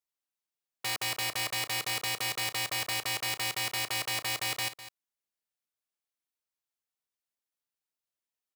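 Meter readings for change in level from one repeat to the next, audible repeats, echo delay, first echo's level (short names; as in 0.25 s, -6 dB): no steady repeat, 1, 0.203 s, -14.0 dB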